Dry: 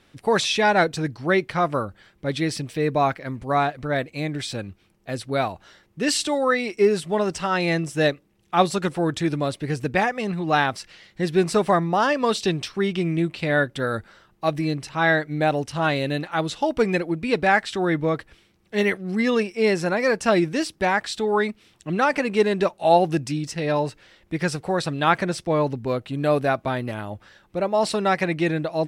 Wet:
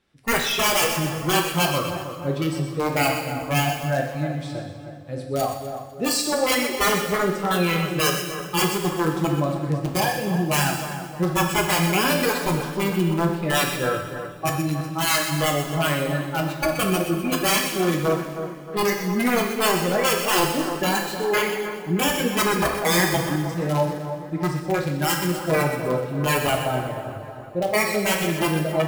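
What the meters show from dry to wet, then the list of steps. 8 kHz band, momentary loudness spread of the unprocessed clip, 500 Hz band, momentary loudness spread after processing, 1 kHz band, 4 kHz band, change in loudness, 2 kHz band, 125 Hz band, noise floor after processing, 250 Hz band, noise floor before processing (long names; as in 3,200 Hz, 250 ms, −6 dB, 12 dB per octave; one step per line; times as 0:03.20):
+8.5 dB, 9 LU, −2.0 dB, 8 LU, −1.0 dB, +5.0 dB, +0.5 dB, +0.5 dB, +2.5 dB, −36 dBFS, 0.0 dB, −61 dBFS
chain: wrap-around overflow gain 14.5 dB
noise reduction from a noise print of the clip's start 13 dB
on a send: echo with a time of its own for lows and highs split 1,700 Hz, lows 313 ms, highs 125 ms, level −9.5 dB
on the sum: coupled-rooms reverb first 0.93 s, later 3.2 s, from −19 dB, DRR 2 dB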